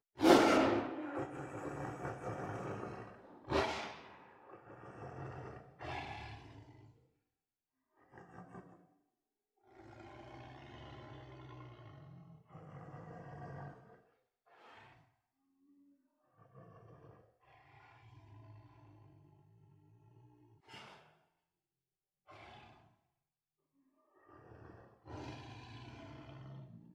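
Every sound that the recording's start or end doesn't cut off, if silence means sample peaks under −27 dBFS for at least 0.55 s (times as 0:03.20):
0:03.52–0:03.65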